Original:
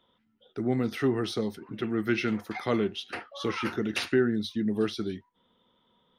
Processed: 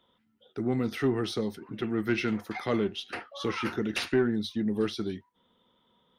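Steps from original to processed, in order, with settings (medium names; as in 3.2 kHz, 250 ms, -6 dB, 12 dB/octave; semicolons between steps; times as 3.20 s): single-diode clipper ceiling -15 dBFS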